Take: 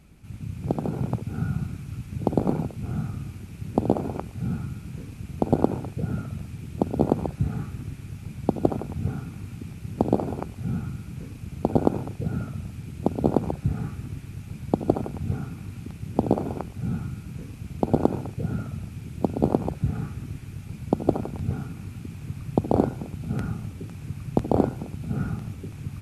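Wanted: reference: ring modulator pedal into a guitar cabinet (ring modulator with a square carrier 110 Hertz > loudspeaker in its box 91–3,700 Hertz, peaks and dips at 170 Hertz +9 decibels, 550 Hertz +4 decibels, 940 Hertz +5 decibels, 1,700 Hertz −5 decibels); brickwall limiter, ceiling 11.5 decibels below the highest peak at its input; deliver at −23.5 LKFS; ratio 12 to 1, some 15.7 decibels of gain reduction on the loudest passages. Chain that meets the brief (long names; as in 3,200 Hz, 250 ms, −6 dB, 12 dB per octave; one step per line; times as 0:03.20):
downward compressor 12 to 1, threshold −32 dBFS
brickwall limiter −28.5 dBFS
ring modulator with a square carrier 110 Hz
loudspeaker in its box 91–3,700 Hz, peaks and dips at 170 Hz +9 dB, 550 Hz +4 dB, 940 Hz +5 dB, 1,700 Hz −5 dB
level +15 dB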